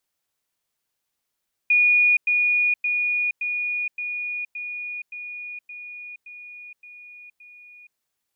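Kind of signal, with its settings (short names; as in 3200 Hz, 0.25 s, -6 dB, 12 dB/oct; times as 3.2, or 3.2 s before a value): level ladder 2450 Hz -14 dBFS, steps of -3 dB, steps 11, 0.47 s 0.10 s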